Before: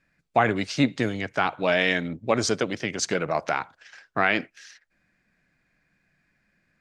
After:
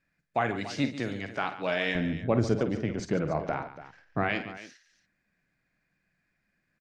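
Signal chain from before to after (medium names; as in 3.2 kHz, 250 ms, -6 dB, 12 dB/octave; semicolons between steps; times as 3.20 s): 1.95–4.29 s: tilt EQ -4 dB/octave; multi-tap echo 50/142/285 ms -10.5/-13.5/-14.5 dB; trim -7.5 dB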